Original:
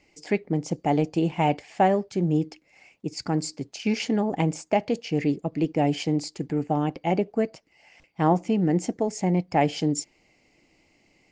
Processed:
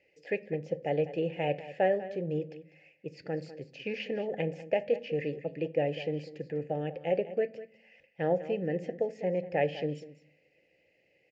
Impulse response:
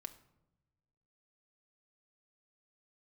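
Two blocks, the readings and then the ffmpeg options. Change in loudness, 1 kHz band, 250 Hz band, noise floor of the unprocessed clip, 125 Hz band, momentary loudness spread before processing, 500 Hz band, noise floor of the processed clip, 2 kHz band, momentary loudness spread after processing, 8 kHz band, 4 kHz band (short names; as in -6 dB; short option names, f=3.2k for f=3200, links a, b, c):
-7.0 dB, -12.0 dB, -13.0 dB, -64 dBFS, -11.0 dB, 7 LU, -2.5 dB, -70 dBFS, -4.5 dB, 12 LU, under -25 dB, -10.0 dB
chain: -filter_complex "[0:a]acrossover=split=5200[a][b];[b]acompressor=threshold=-53dB:ratio=4:attack=1:release=60[c];[a][c]amix=inputs=2:normalize=0,asplit=3[d][e][f];[d]bandpass=f=530:t=q:w=8,volume=0dB[g];[e]bandpass=f=1.84k:t=q:w=8,volume=-6dB[h];[f]bandpass=f=2.48k:t=q:w=8,volume=-9dB[i];[g][h][i]amix=inputs=3:normalize=0,lowshelf=f=200:t=q:w=1.5:g=9,aecho=1:1:198:0.188,asplit=2[j][k];[1:a]atrim=start_sample=2205,asetrate=79380,aresample=44100[l];[k][l]afir=irnorm=-1:irlink=0,volume=11dB[m];[j][m]amix=inputs=2:normalize=0"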